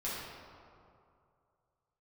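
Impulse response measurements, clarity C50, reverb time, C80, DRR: -2.0 dB, 2.5 s, 0.0 dB, -9.0 dB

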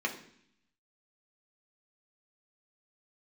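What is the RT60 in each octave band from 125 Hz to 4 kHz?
0.95, 0.90, 0.65, 0.65, 0.75, 0.80 s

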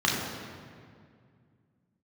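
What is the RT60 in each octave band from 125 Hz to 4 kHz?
3.0, 2.8, 2.3, 2.0, 1.8, 1.4 s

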